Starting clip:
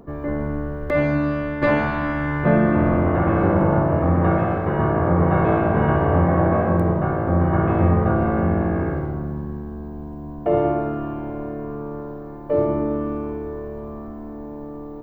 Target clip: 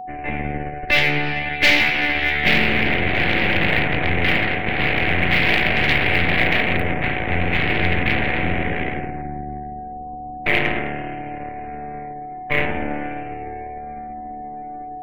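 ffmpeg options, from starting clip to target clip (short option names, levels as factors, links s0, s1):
-filter_complex "[0:a]aeval=exprs='0.596*(cos(1*acos(clip(val(0)/0.596,-1,1)))-cos(1*PI/2))+0.0211*(cos(3*acos(clip(val(0)/0.596,-1,1)))-cos(3*PI/2))+0.0075*(cos(4*acos(clip(val(0)/0.596,-1,1)))-cos(4*PI/2))+0.0299*(cos(5*acos(clip(val(0)/0.596,-1,1)))-cos(5*PI/2))+0.211*(cos(8*acos(clip(val(0)/0.596,-1,1)))-cos(8*PI/2))':c=same,highshelf=f=1600:t=q:w=3:g=10.5,acrossover=split=200|1700[s0][s1][s2];[s2]acrusher=bits=5:mode=log:mix=0:aa=0.000001[s3];[s0][s1][s3]amix=inputs=3:normalize=0,afftdn=nr=30:nf=-40,aeval=exprs='val(0)+0.0794*sin(2*PI*740*n/s)':c=same,volume=0.398"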